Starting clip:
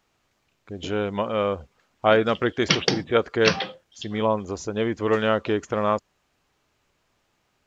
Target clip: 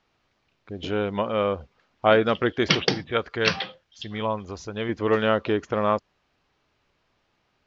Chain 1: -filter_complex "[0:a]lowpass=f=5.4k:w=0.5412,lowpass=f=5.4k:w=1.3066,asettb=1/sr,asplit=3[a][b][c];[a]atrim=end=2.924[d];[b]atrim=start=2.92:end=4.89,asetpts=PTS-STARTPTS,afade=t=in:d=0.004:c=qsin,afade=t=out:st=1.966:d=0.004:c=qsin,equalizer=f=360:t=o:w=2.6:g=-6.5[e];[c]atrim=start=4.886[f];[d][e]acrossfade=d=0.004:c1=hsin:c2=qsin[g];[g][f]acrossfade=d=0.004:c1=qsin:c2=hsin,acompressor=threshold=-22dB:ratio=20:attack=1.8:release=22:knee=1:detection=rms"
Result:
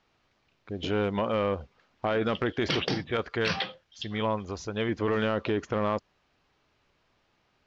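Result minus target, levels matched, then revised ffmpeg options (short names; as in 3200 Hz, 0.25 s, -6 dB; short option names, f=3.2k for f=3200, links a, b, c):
compressor: peak gain reduction +13 dB
-filter_complex "[0:a]lowpass=f=5.4k:w=0.5412,lowpass=f=5.4k:w=1.3066,asettb=1/sr,asplit=3[a][b][c];[a]atrim=end=2.924[d];[b]atrim=start=2.92:end=4.89,asetpts=PTS-STARTPTS,afade=t=in:d=0.004:c=qsin,afade=t=out:st=1.966:d=0.004:c=qsin,equalizer=f=360:t=o:w=2.6:g=-6.5[e];[c]atrim=start=4.886[f];[d][e]acrossfade=d=0.004:c1=hsin:c2=qsin[g];[g][f]acrossfade=d=0.004:c1=qsin:c2=hsin"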